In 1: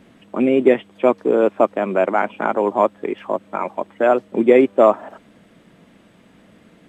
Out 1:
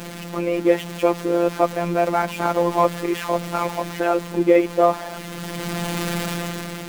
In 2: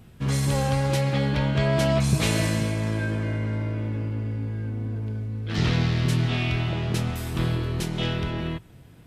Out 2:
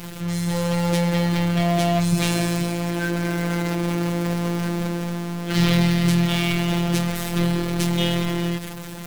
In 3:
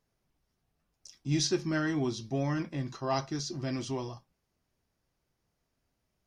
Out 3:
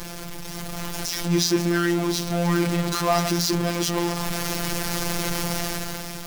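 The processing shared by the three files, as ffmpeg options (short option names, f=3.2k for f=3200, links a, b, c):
-af "aeval=exprs='val(0)+0.5*0.0596*sgn(val(0))':c=same,afftfilt=real='hypot(re,im)*cos(PI*b)':imag='0':win_size=1024:overlap=0.75,dynaudnorm=f=160:g=9:m=11.5dB,volume=-1dB"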